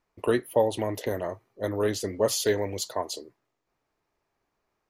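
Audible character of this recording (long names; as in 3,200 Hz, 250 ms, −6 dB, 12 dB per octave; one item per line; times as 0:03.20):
background noise floor −80 dBFS
spectral slope −4.0 dB per octave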